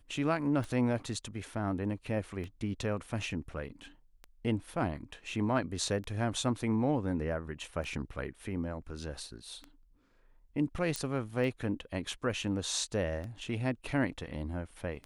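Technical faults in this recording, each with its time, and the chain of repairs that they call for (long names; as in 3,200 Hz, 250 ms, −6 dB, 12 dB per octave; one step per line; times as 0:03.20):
scratch tick 33 1/3 rpm
0:10.96: click −17 dBFS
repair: click removal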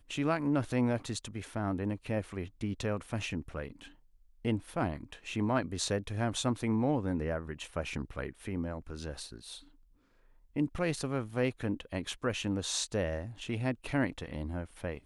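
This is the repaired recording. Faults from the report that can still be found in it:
0:10.96: click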